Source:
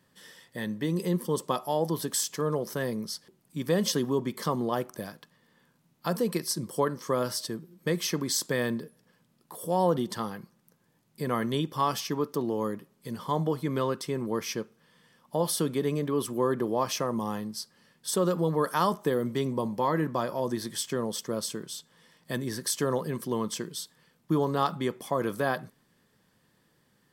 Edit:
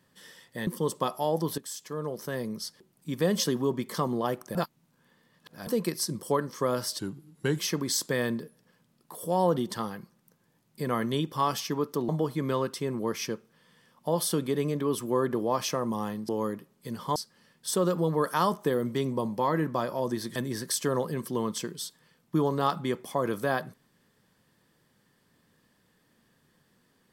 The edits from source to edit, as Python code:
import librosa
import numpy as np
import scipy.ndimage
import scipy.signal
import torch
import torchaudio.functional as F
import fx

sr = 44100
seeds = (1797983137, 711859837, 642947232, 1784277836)

y = fx.edit(x, sr, fx.cut(start_s=0.67, length_s=0.48),
    fx.fade_in_from(start_s=2.06, length_s=1.56, curve='qsin', floor_db=-14.0),
    fx.reverse_span(start_s=5.03, length_s=1.12),
    fx.speed_span(start_s=7.47, length_s=0.52, speed=0.87),
    fx.move(start_s=12.49, length_s=0.87, to_s=17.56),
    fx.cut(start_s=20.76, length_s=1.56), tone=tone)